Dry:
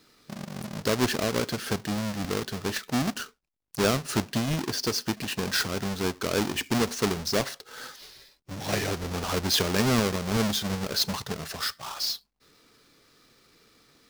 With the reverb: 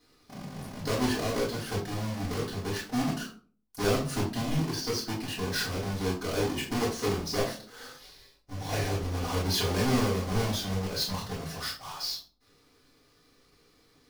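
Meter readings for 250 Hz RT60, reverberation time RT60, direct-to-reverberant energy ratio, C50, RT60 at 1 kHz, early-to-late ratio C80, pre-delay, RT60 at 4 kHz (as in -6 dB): 0.55 s, 0.40 s, -7.0 dB, 7.0 dB, 0.35 s, 12.5 dB, 3 ms, 0.25 s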